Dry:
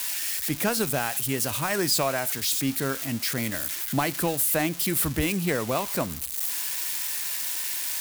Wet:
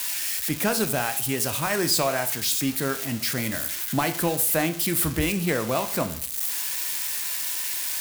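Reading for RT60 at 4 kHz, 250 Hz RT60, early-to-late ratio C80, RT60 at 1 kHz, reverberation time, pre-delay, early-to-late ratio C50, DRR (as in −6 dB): 0.45 s, 0.55 s, 17.0 dB, 0.50 s, 0.50 s, 15 ms, 14.0 dB, 8.5 dB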